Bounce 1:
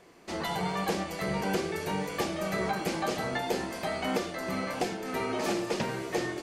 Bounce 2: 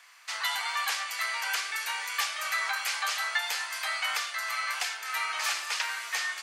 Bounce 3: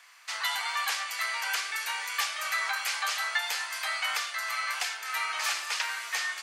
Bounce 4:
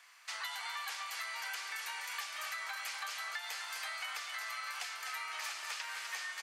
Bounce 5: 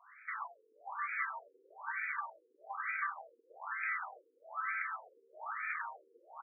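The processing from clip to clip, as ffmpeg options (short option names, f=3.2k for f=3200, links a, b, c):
-af "highpass=f=1.2k:w=0.5412,highpass=f=1.2k:w=1.3066,volume=7.5dB"
-af anull
-af "aecho=1:1:251|502|753|1004|1255:0.355|0.156|0.0687|0.0302|0.0133,acompressor=threshold=-33dB:ratio=6,volume=-5dB"
-filter_complex "[0:a]asplit=2[a][b];[b]adelay=360,highpass=300,lowpass=3.4k,asoftclip=type=hard:threshold=-34.5dB,volume=-7dB[c];[a][c]amix=inputs=2:normalize=0,afftfilt=real='re*between(b*sr/1024,340*pow(1800/340,0.5+0.5*sin(2*PI*1.1*pts/sr))/1.41,340*pow(1800/340,0.5+0.5*sin(2*PI*1.1*pts/sr))*1.41)':imag='im*between(b*sr/1024,340*pow(1800/340,0.5+0.5*sin(2*PI*1.1*pts/sr))/1.41,340*pow(1800/340,0.5+0.5*sin(2*PI*1.1*pts/sr))*1.41)':win_size=1024:overlap=0.75,volume=6.5dB"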